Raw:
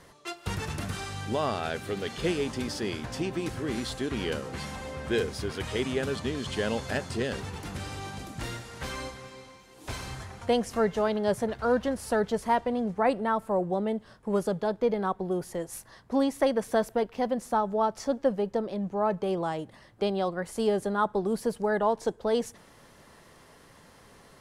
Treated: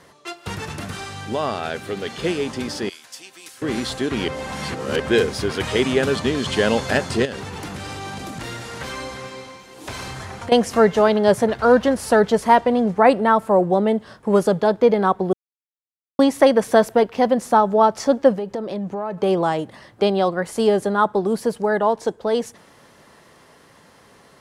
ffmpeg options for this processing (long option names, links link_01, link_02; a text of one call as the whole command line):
ffmpeg -i in.wav -filter_complex "[0:a]asettb=1/sr,asplit=3[link_01][link_02][link_03];[link_01]atrim=end=2.894[link_04];[link_02]atrim=start=2.89:end=3.62,asetpts=PTS-STARTPTS,afade=type=in:duration=0.004:curve=qsin,afade=type=out:start_time=0.726:duration=0.004:curve=qsin,aderivative[link_05];[link_03]atrim=start=3.616[link_06];[link_04][link_05]acrossfade=duration=0.004:curve1=hsin:curve2=qsin[link_07];[link_07][link_06]acrossfade=duration=0.004:curve1=qsin:curve2=hsin,asettb=1/sr,asplit=3[link_08][link_09][link_10];[link_08]atrim=end=7.254[link_11];[link_09]atrim=start=7.25:end=10.52,asetpts=PTS-STARTPTS,afade=type=in:duration=0.004:curve=qsin,afade=type=out:start_time=3.266:duration=0.004:curve=qsin,acompressor=threshold=-37dB:ratio=6:attack=3.2:release=140:knee=1:detection=peak[link_12];[link_10]atrim=start=10.516[link_13];[link_11][link_12]acrossfade=duration=0.004:curve1=hsin:curve2=qsin[link_14];[link_14][link_13]acrossfade=duration=0.004:curve1=qsin:curve2=hsin,asettb=1/sr,asplit=3[link_15][link_16][link_17];[link_15]atrim=end=18.334[link_18];[link_16]atrim=start=18.33:end=19.18,asetpts=PTS-STARTPTS,afade=type=in:duration=0.004:curve=qsin,afade=type=out:start_time=0.846:duration=0.004:curve=qsin,acompressor=threshold=-34dB:ratio=5:attack=3.2:release=140:knee=1:detection=peak[link_19];[link_17]atrim=start=19.176[link_20];[link_18][link_19]acrossfade=duration=0.004:curve1=hsin:curve2=qsin[link_21];[link_21][link_20]acrossfade=duration=0.004:curve1=qsin:curve2=hsin,asplit=5[link_22][link_23][link_24][link_25][link_26];[link_22]atrim=end=4.282[link_27];[link_23]atrim=start=4.278:end=5.002,asetpts=PTS-STARTPTS,areverse[link_28];[link_24]atrim=start=4.998:end=15.33,asetpts=PTS-STARTPTS,afade=type=out:start_time=10.328:duration=0.004:curve=hsin[link_29];[link_25]atrim=start=15.33:end=16.19,asetpts=PTS-STARTPTS,volume=0[link_30];[link_26]atrim=start=16.19,asetpts=PTS-STARTPTS,afade=type=in:duration=0.004:curve=hsin[link_31];[link_27][link_28]acrossfade=duration=0.004:curve1=hsin:curve2=hsin[link_32];[link_29][link_30][link_31]concat=n=3:v=0:a=1[link_33];[link_32][link_33]acrossfade=duration=0.004:curve1=hsin:curve2=hsin,dynaudnorm=framelen=380:gausssize=21:maxgain=6.5dB,highpass=frequency=130:poles=1,highshelf=frequency=8300:gain=-4,volume=5dB" out.wav